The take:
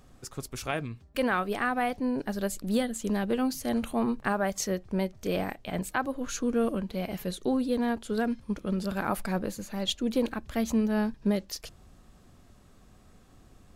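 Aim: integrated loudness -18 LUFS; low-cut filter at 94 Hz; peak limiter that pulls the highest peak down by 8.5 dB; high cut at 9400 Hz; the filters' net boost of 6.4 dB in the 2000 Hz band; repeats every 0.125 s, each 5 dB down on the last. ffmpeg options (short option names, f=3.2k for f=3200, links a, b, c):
-af "highpass=94,lowpass=9.4k,equalizer=f=2k:t=o:g=8.5,alimiter=limit=-19dB:level=0:latency=1,aecho=1:1:125|250|375|500|625|750|875:0.562|0.315|0.176|0.0988|0.0553|0.031|0.0173,volume=11.5dB"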